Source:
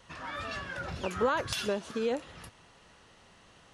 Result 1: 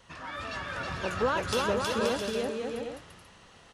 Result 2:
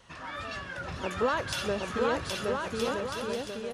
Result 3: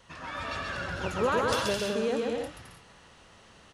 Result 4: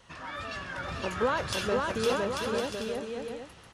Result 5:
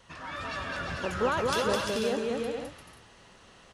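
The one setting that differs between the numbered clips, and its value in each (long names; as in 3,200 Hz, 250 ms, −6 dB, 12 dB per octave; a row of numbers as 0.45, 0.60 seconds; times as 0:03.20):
bouncing-ball delay, first gap: 320, 770, 130, 510, 210 milliseconds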